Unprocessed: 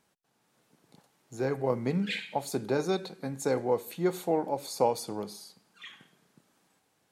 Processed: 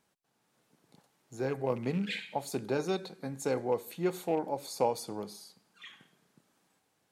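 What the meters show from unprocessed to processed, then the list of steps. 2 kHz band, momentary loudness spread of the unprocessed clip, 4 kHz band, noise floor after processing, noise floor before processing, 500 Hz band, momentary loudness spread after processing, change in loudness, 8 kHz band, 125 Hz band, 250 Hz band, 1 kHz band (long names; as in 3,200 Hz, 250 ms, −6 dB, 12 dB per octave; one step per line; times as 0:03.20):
−2.5 dB, 19 LU, −3.0 dB, −76 dBFS, −73 dBFS, −3.0 dB, 19 LU, −3.0 dB, −3.0 dB, −3.0 dB, −3.0 dB, −3.0 dB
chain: loose part that buzzes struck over −33 dBFS, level −36 dBFS
level −3 dB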